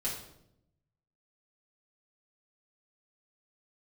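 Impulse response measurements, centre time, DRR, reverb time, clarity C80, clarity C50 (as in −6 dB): 36 ms, −7.0 dB, 0.75 s, 8.0 dB, 4.5 dB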